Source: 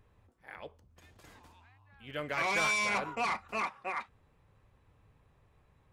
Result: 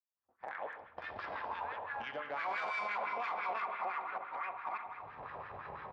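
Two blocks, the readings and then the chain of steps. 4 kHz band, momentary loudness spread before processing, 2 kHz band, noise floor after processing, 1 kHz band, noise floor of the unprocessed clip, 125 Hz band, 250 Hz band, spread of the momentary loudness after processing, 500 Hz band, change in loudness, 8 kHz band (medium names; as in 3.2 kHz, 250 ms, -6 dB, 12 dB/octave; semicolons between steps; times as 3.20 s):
-11.0 dB, 21 LU, -5.5 dB, -82 dBFS, 0.0 dB, -69 dBFS, no reading, -11.0 dB, 11 LU, -3.0 dB, -7.5 dB, under -25 dB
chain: chunks repeated in reverse 597 ms, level -11 dB; recorder AGC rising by 58 dB/s; steep low-pass 5.4 kHz 96 dB/octave; in parallel at -0.5 dB: compression, threshold -44 dBFS, peak gain reduction 16 dB; on the sum: Chebyshev shaper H 4 -6 dB, 6 -11 dB, 8 -25 dB, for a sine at -17.5 dBFS; on a send: delay 245 ms -17 dB; on the sum: spring tank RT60 2.2 s, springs 58 ms, chirp 35 ms, DRR 4.5 dB; LFO band-pass sine 5.9 Hz 710–1600 Hz; expander -47 dBFS; peak limiter -30 dBFS, peak gain reduction 8 dB; three bands expanded up and down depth 40%; trim +1 dB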